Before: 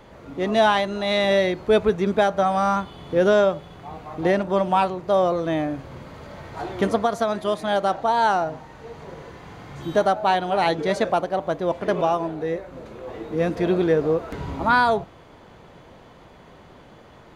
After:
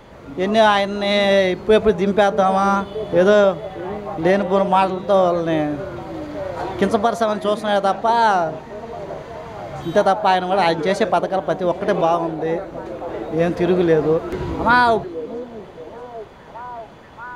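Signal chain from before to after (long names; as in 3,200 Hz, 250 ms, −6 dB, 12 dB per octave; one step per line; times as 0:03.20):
echo through a band-pass that steps 629 ms, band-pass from 280 Hz, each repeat 0.7 octaves, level −10 dB
level +4 dB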